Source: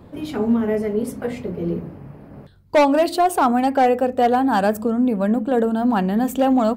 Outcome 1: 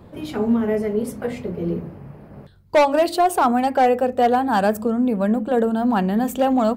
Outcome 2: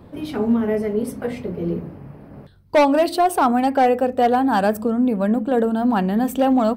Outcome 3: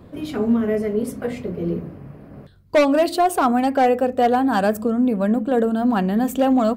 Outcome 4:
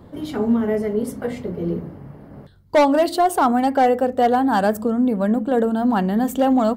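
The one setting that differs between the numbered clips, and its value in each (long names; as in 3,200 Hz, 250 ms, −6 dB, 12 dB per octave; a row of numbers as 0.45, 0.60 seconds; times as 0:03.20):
notch filter, centre frequency: 280, 7,000, 870, 2,500 Hertz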